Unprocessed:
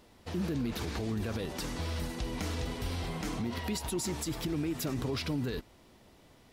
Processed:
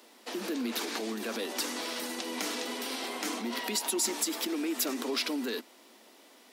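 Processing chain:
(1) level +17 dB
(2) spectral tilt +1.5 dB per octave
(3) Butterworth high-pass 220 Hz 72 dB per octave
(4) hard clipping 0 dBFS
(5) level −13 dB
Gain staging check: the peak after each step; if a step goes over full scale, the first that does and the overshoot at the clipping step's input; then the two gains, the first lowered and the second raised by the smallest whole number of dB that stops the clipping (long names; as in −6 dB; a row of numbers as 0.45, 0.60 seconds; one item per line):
−7.5, −3.5, −2.0, −2.0, −15.0 dBFS
no step passes full scale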